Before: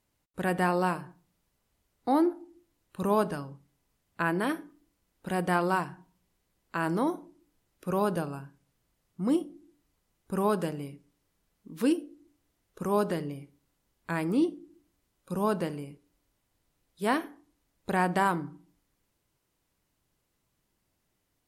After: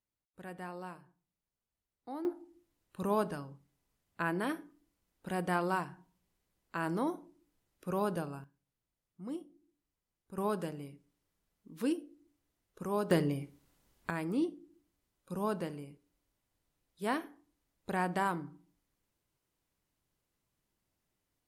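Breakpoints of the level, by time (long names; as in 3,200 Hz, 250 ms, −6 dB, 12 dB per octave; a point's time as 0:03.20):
−17.5 dB
from 0:02.25 −5.5 dB
from 0:08.44 −14.5 dB
from 0:10.38 −7 dB
from 0:13.11 +4 dB
from 0:14.10 −6.5 dB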